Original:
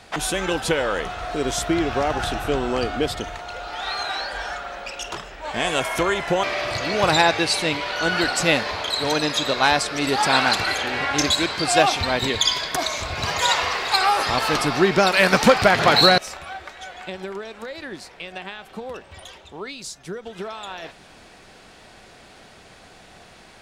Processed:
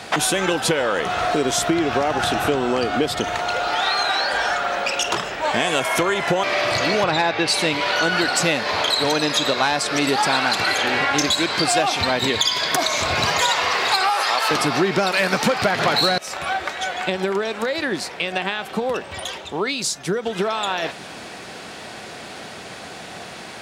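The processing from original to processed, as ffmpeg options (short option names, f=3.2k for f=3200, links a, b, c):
-filter_complex "[0:a]asettb=1/sr,asplit=3[a][b][c];[a]atrim=end=7.044[d];[b]atrim=start=7.04:end=7.48,asetpts=PTS-STARTPTS,afade=t=in:d=0.004:c=qsin,afade=t=out:st=0.436:d=0.004:c=qsin,lowpass=3.9k[e];[c]atrim=start=7.476[f];[d][e]acrossfade=d=0.004:c1=hsin:c2=qsin[g];[g][f]acrossfade=d=0.004:c1=qsin:c2=hsin,asettb=1/sr,asplit=3[h][i][j];[h]atrim=end=14.094[k];[i]atrim=start=14.09:end=14.51,asetpts=PTS-STARTPTS,afade=t=in:d=0.004:c=qsin,afade=t=out:st=0.416:d=0.004:c=qsin,highpass=570[l];[j]atrim=start=14.506[m];[k][l]acrossfade=d=0.004:c1=hsin:c2=qsin[n];[n][m]acrossfade=d=0.004:c1=qsin:c2=hsin,acontrast=60,highpass=120,acompressor=threshold=-23dB:ratio=5,volume=5.5dB"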